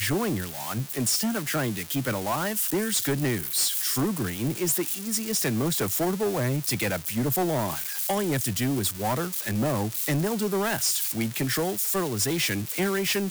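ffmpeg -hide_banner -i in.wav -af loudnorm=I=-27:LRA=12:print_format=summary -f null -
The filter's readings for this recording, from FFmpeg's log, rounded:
Input Integrated:    -25.7 LUFS
Input True Peak:     -16.3 dBTP
Input LRA:             1.1 LU
Input Threshold:     -35.7 LUFS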